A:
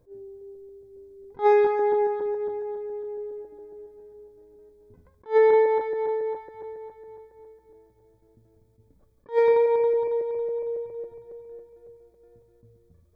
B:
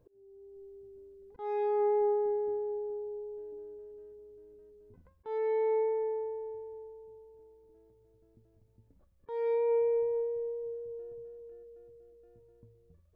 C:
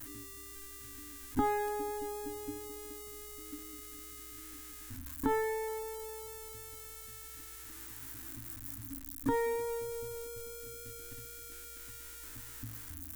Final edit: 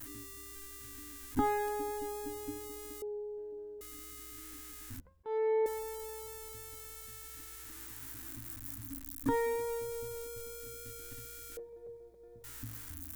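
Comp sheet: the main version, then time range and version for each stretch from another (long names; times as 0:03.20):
C
0:03.02–0:03.81: punch in from B
0:05.00–0:05.66: punch in from B
0:11.57–0:12.44: punch in from A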